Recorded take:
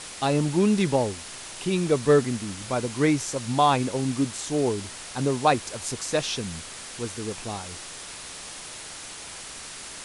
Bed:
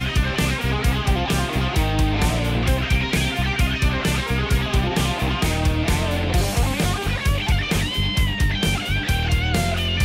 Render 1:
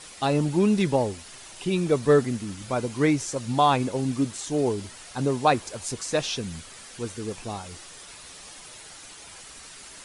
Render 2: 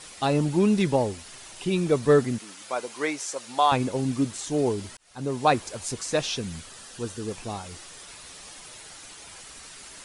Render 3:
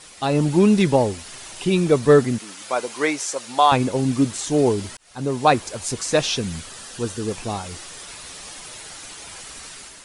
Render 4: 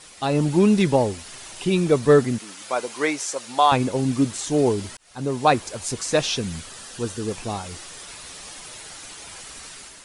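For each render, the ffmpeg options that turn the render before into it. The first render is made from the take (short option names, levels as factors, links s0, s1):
-af "afftdn=nr=8:nf=-40"
-filter_complex "[0:a]asettb=1/sr,asplit=3[s0][s1][s2];[s0]atrim=end=2.384[s3];[s1]atrim=start=2.38:end=3.72,asetpts=PTS-STARTPTS,afade=t=in:d=0.004:c=qsin,afade=t=out:st=1.336:d=0.004:c=qsin,highpass=540[s4];[s2]atrim=start=3.716[s5];[s3][s4]acrossfade=d=0.004:c1=hsin:c2=qsin[s6];[s6][s5]acrossfade=d=0.004:c1=qsin:c2=hsin,asettb=1/sr,asplit=3[s7][s8][s9];[s7]atrim=end=6.694[s10];[s8]atrim=start=6.69:end=7.28,asetpts=PTS-STARTPTS,afade=t=in:d=0.004:c=qsin,afade=t=out:st=0.586:d=0.004:c=qsin,bandreject=f=2200:w=5.5[s11];[s9]atrim=start=7.276[s12];[s10][s11]acrossfade=d=0.004:c1=hsin:c2=qsin[s13];[s13][s12]acrossfade=d=0.004:c1=qsin:c2=hsin,asplit=2[s14][s15];[s14]atrim=end=4.97,asetpts=PTS-STARTPTS,afade=t=out:st=4.966:d=0.004:c=hsin[s16];[s15]atrim=start=4.97,asetpts=PTS-STARTPTS,afade=t=in:d=0.53[s17];[s16][s17]concat=n=2:v=0:a=1"
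-af "dynaudnorm=f=140:g=5:m=2.11"
-af "volume=0.841"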